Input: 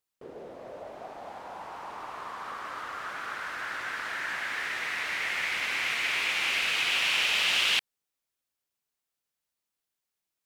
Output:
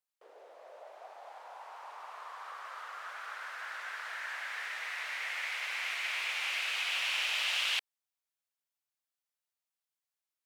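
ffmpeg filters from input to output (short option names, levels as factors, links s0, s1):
-af "highpass=f=550:w=0.5412,highpass=f=550:w=1.3066,volume=0.473"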